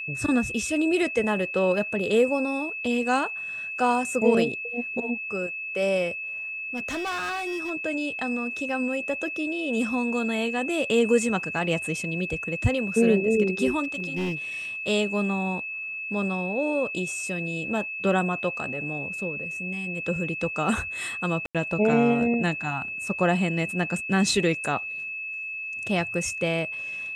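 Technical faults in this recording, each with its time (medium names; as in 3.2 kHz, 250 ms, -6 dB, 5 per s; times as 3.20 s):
whine 2.6 kHz -31 dBFS
6.76–7.71 s: clipped -26.5 dBFS
13.83–14.35 s: clipped -24 dBFS
21.46–21.55 s: dropout 87 ms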